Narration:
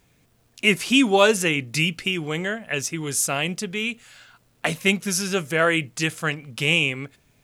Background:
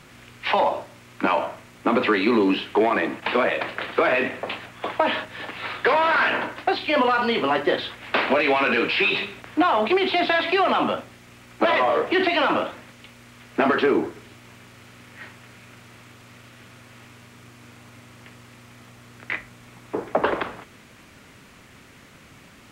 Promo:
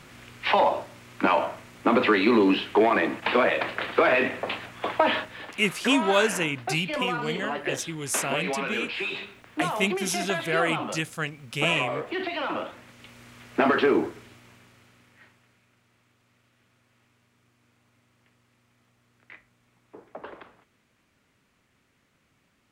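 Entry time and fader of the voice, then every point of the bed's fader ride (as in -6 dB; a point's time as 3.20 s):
4.95 s, -5.5 dB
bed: 5.17 s -0.5 dB
5.62 s -10 dB
12.38 s -10 dB
13.18 s -1.5 dB
14.03 s -1.5 dB
15.70 s -19.5 dB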